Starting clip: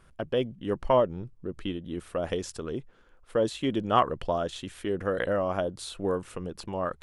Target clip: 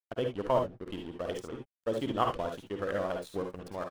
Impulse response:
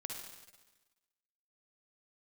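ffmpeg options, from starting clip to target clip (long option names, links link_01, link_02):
-filter_complex "[0:a]atempo=1.8,aeval=exprs='sgn(val(0))*max(abs(val(0))-0.00841,0)':channel_layout=same[link_01];[1:a]atrim=start_sample=2205,atrim=end_sample=3969[link_02];[link_01][link_02]afir=irnorm=-1:irlink=0"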